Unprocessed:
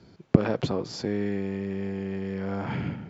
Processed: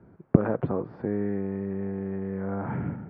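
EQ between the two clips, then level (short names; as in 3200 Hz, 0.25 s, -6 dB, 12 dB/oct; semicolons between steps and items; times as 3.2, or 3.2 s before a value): LPF 1600 Hz 24 dB/oct; 0.0 dB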